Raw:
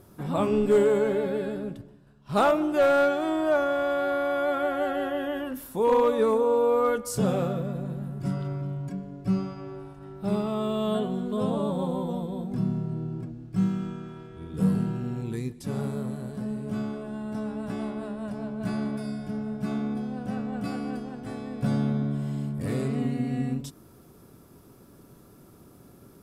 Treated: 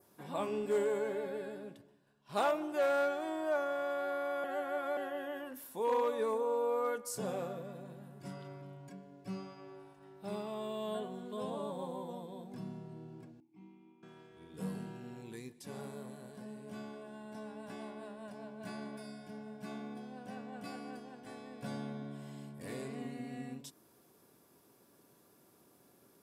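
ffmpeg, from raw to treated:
-filter_complex "[0:a]asettb=1/sr,asplit=3[a][b][c];[a]atrim=end=13.404[d];[b]atrim=start=13.4:end=14.03,asetpts=PTS-STARTPTS,afade=t=in:d=0.004:c=qsin,afade=t=out:st=0.626:d=0.004:c=qsin,asplit=3[e][f][g];[e]bandpass=f=300:t=q:w=8,volume=0dB[h];[f]bandpass=f=870:t=q:w=8,volume=-6dB[i];[g]bandpass=f=2.24k:t=q:w=8,volume=-9dB[j];[h][i][j]amix=inputs=3:normalize=0[k];[c]atrim=start=14.026[l];[d][k]acrossfade=d=0.004:c1=hsin:c2=qsin[m];[m][l]acrossfade=d=0.004:c1=qsin:c2=hsin,asplit=3[n][o][p];[n]atrim=end=4.442[q];[o]atrim=start=4.438:end=4.972,asetpts=PTS-STARTPTS,areverse[r];[p]atrim=start=4.968[s];[q][r]acrossfade=d=0.004:c1=hsin:c2=hsin[t];[t][s]acrossfade=d=0.004:c1=hsin:c2=hsin,highpass=f=610:p=1,bandreject=f=1.3k:w=7.6,adynamicequalizer=threshold=0.00224:dfrequency=3200:dqfactor=1.6:tfrequency=3200:tqfactor=1.6:attack=5:release=100:ratio=0.375:range=2.5:mode=cutabove:tftype=bell,volume=-6.5dB"

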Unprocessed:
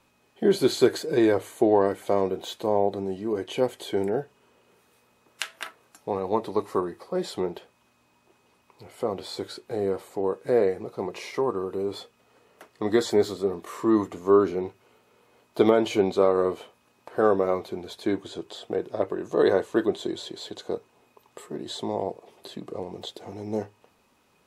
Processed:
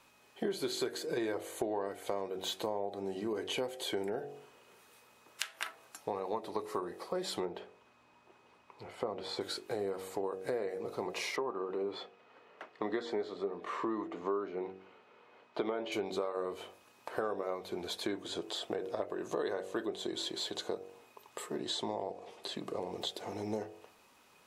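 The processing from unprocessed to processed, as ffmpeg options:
-filter_complex "[0:a]asettb=1/sr,asplit=3[a][b][c];[a]atrim=end=7.454[d];[b]atrim=start=7.45:end=9.41,asetpts=PTS-STARTPTS,afade=t=in:d=0.004:c=qsin,afade=t=out:st=1.956:d=0.004:c=qsin,aemphasis=mode=reproduction:type=75fm[e];[c]atrim=start=9.406[f];[d][e]acrossfade=d=0.004:c1=hsin:c2=qsin[g];[g][f]acrossfade=d=0.004:c1=qsin:c2=hsin,asettb=1/sr,asplit=3[h][i][j];[h]atrim=end=11.364[k];[i]atrim=start=11.36:end=15.92,asetpts=PTS-STARTPTS,afade=t=in:d=0.004:c=qsin,afade=t=out:st=4.556:d=0.004:c=qsin,highpass=150,lowpass=2.9k[l];[j]atrim=start=15.916[m];[k][l]acrossfade=d=0.004:c1=hsin:c2=qsin[n];[n][m]acrossfade=d=0.004:c1=qsin:c2=hsin,asettb=1/sr,asplit=3[o][p][q];[o]atrim=end=21.594[r];[p]atrim=start=21.59:end=22.56,asetpts=PTS-STARTPTS,afade=t=in:d=0.004:c=qsin,afade=t=out:st=0.966:d=0.004:c=qsin,lowpass=8.5k[s];[q]atrim=start=22.556[t];[r][s]acrossfade=d=0.004:c1=hsin:c2=qsin[u];[u][t]acrossfade=d=0.004:c1=qsin:c2=hsin,lowshelf=f=370:g=-9,bandreject=f=47.23:t=h:w=4,bandreject=f=94.46:t=h:w=4,bandreject=f=141.69:t=h:w=4,bandreject=f=188.92:t=h:w=4,bandreject=f=236.15:t=h:w=4,bandreject=f=283.38:t=h:w=4,bandreject=f=330.61:t=h:w=4,bandreject=f=377.84:t=h:w=4,bandreject=f=425.07:t=h:w=4,bandreject=f=472.3:t=h:w=4,bandreject=f=519.53:t=h:w=4,bandreject=f=566.76:t=h:w=4,bandreject=f=613.99:t=h:w=4,bandreject=f=661.22:t=h:w=4,bandreject=f=708.45:t=h:w=4,bandreject=f=755.68:t=h:w=4,bandreject=f=802.91:t=h:w=4,acompressor=threshold=-36dB:ratio=6,volume=3dB"

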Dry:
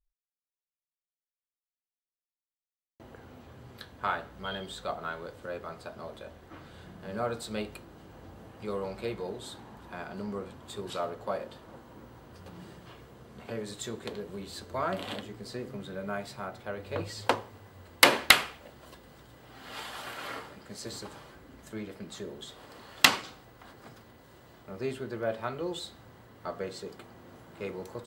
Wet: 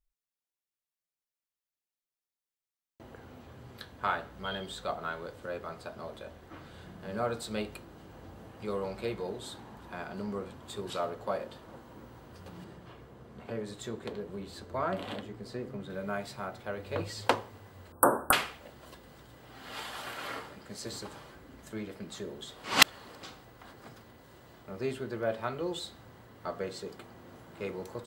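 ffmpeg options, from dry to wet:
-filter_complex "[0:a]asettb=1/sr,asplit=3[a][b][c];[a]atrim=end=12.644[d];[b]atrim=start=12.64:end=15.9,asetpts=PTS-STARTPTS,afade=t=in:d=0.004:c=qsin,afade=t=out:st=3.256:d=0.004:c=qsin,highshelf=f=2.6k:g=-7.5[e];[c]atrim=start=15.896[f];[d][e]acrossfade=d=0.004:c1=hsin:c2=qsin[g];[g][f]acrossfade=d=0.004:c1=qsin:c2=hsin,asettb=1/sr,asplit=3[h][i][j];[h]atrim=end=17.924[k];[i]atrim=start=17.92:end=18.33,asetpts=PTS-STARTPTS,afade=t=in:d=0.004:c=qsin,afade=t=out:st=0.406:d=0.004:c=qsin,asuperstop=centerf=3700:order=20:qfactor=0.54[l];[j]atrim=start=18.326[m];[k][l]acrossfade=d=0.004:c1=hsin:c2=qsin[n];[n][m]acrossfade=d=0.004:c1=qsin:c2=hsin,asplit=3[o][p][q];[o]atrim=end=22.642[r];[p]atrim=start=22.638:end=23.232,asetpts=PTS-STARTPTS,areverse[s];[q]atrim=start=23.228[t];[r][s]acrossfade=d=0.004:c1=hsin:c2=hsin[u];[u][t]acrossfade=d=0.004:c1=hsin:c2=hsin"

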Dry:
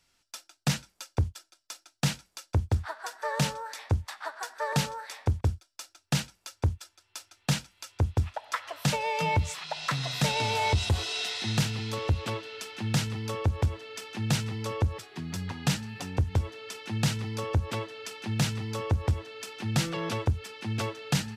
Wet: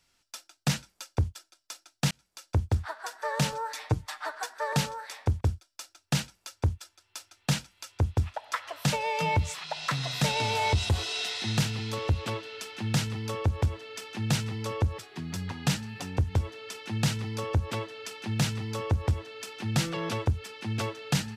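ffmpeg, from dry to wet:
-filter_complex "[0:a]asettb=1/sr,asplit=3[a][b][c];[a]atrim=end=3.524[d];[b]atrim=start=3.52:end=4.46,asetpts=PTS-STARTPTS,afade=t=in:d=0.004:c=qsin,afade=t=out:st=0.936:d=0.004:c=qsin,aecho=1:1:6.6:0.86,atrim=end_sample=41454[e];[c]atrim=start=4.456[f];[d][e]acrossfade=d=0.004:c1=hsin:c2=qsin[g];[g][f]acrossfade=d=0.004:c1=qsin:c2=hsin,asplit=2[h][i];[h]atrim=end=2.11,asetpts=PTS-STARTPTS,afade=t=out:st=2.106:d=0.004:c=hsin[j];[i]atrim=start=2.11,asetpts=PTS-STARTPTS,afade=t=in:d=0.4[k];[j][k]concat=n=2:v=0:a=1"

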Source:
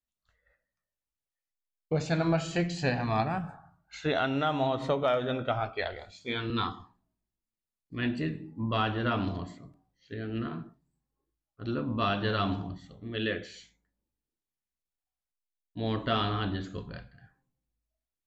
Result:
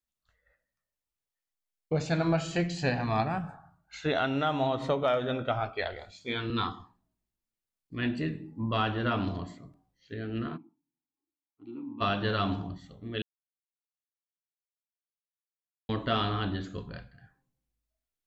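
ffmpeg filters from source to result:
-filter_complex "[0:a]asplit=3[a][b][c];[a]afade=t=out:st=10.56:d=0.02[d];[b]asplit=3[e][f][g];[e]bandpass=f=300:t=q:w=8,volume=0dB[h];[f]bandpass=f=870:t=q:w=8,volume=-6dB[i];[g]bandpass=f=2.24k:t=q:w=8,volume=-9dB[j];[h][i][j]amix=inputs=3:normalize=0,afade=t=in:st=10.56:d=0.02,afade=t=out:st=12:d=0.02[k];[c]afade=t=in:st=12:d=0.02[l];[d][k][l]amix=inputs=3:normalize=0,asplit=3[m][n][o];[m]atrim=end=13.22,asetpts=PTS-STARTPTS,afade=t=out:st=13.216:d=0.004:c=hsin[p];[n]atrim=start=13.22:end=15.89,asetpts=PTS-STARTPTS,volume=0[q];[o]atrim=start=15.89,asetpts=PTS-STARTPTS,afade=t=in:d=0.004:c=hsin[r];[p][q][r]concat=n=3:v=0:a=1"

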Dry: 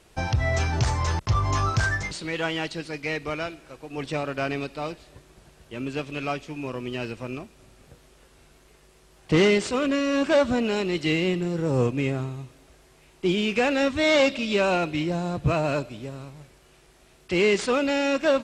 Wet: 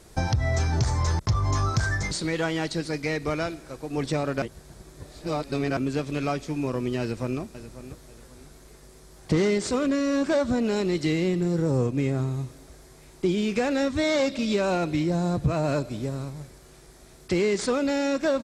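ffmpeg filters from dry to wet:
-filter_complex "[0:a]asplit=2[a][b];[b]afade=t=in:st=7:d=0.01,afade=t=out:st=7.4:d=0.01,aecho=0:1:540|1080|1620:0.177828|0.0533484|0.0160045[c];[a][c]amix=inputs=2:normalize=0,asplit=3[d][e][f];[d]atrim=end=4.422[g];[e]atrim=start=4.418:end=5.772,asetpts=PTS-STARTPTS,areverse[h];[f]atrim=start=5.768[i];[g][h]acrossfade=d=0.004:c1=hsin:c2=hsin[j];[j][i]acrossfade=d=0.004:c1=hsin:c2=hsin,equalizer=f=1.1k:t=o:w=2.7:g=-4.5,acompressor=threshold=-30dB:ratio=3,equalizer=f=2.8k:t=o:w=0.51:g=-10,volume=7.5dB"

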